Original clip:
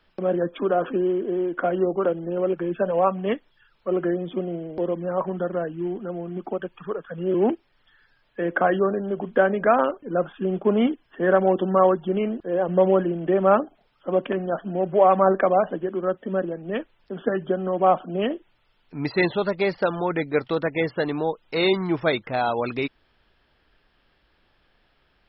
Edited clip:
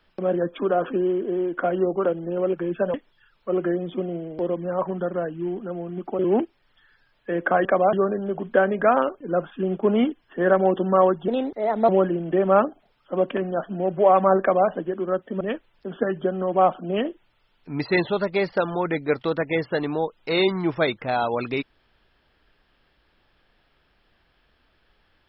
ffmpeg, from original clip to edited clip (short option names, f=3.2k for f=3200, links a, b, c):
-filter_complex "[0:a]asplit=8[a][b][c][d][e][f][g][h];[a]atrim=end=2.942[i];[b]atrim=start=3.328:end=6.582[j];[c]atrim=start=7.288:end=8.752[k];[d]atrim=start=15.358:end=15.642[l];[e]atrim=start=8.748:end=12.104[m];[f]atrim=start=12.1:end=12.84,asetpts=PTS-STARTPTS,asetrate=53802,aresample=44100,atrim=end_sample=26749,asetpts=PTS-STARTPTS[n];[g]atrim=start=12.836:end=16.362[o];[h]atrim=start=16.658[p];[i][j]acrossfade=d=0.004:c1=hsin:c2=hsin[q];[q][k]acrossfade=d=0.004:c1=hsin:c2=hsin[r];[r][l]acrossfade=d=0.004:c1=hsin:c2=hsin[s];[s][m]acrossfade=d=0.004:c1=hsin:c2=hsin[t];[t][n]acrossfade=d=0.004:c1=hsin:c2=hsin[u];[u][o]acrossfade=d=0.004:c1=hsin:c2=hsin[v];[v][p]acrossfade=d=0.004:c1=hsin:c2=hsin"